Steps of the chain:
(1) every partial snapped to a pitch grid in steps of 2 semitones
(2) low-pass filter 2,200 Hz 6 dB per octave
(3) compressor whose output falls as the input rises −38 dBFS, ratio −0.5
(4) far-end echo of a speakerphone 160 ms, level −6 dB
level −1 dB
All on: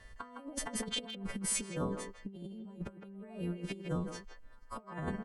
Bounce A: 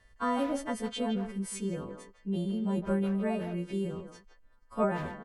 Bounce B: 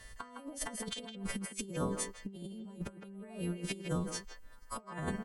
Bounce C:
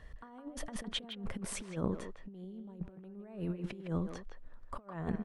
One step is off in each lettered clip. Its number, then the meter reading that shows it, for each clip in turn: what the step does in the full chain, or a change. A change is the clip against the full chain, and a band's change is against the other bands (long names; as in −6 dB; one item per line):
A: 3, change in momentary loudness spread −3 LU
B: 2, 8 kHz band −3.0 dB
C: 1, 8 kHz band −8.0 dB